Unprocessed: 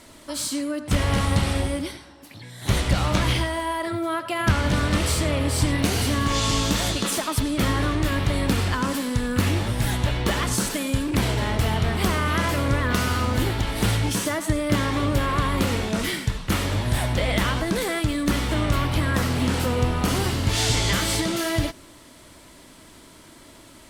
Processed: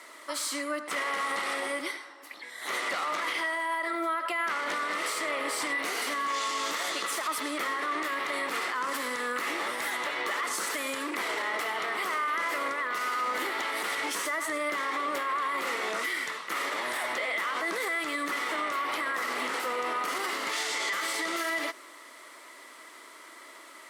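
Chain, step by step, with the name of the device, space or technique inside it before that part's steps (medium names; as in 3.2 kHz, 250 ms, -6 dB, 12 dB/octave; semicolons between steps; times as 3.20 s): laptop speaker (high-pass 360 Hz 24 dB/octave; peaking EQ 1.2 kHz +11 dB 0.45 oct; peaking EQ 2 kHz +12 dB 0.26 oct; peak limiter -19.5 dBFS, peak gain reduction 12.5 dB); trim -3 dB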